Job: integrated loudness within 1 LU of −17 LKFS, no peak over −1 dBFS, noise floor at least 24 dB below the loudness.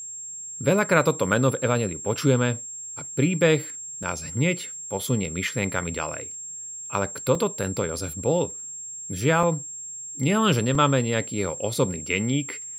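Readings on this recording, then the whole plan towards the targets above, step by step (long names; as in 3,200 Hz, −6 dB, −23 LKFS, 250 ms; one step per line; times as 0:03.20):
number of dropouts 4; longest dropout 3.0 ms; interfering tone 7,500 Hz; level of the tone −34 dBFS; integrated loudness −25.0 LKFS; sample peak −4.5 dBFS; target loudness −17.0 LKFS
→ repair the gap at 0:04.03/0:07.35/0:09.43/0:10.75, 3 ms
notch filter 7,500 Hz, Q 30
level +8 dB
brickwall limiter −1 dBFS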